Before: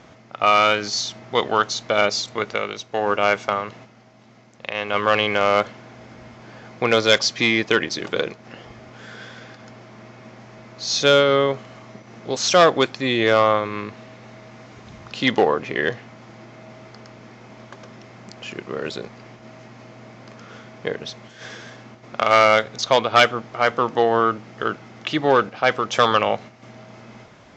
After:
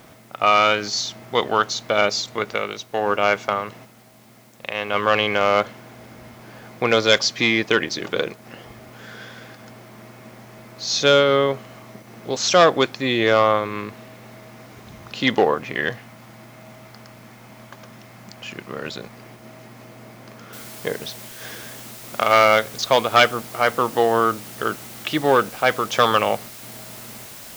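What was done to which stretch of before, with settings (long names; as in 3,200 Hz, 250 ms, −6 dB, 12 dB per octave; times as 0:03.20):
0:15.54–0:19.13: parametric band 400 Hz −6 dB
0:20.53: noise floor change −57 dB −40 dB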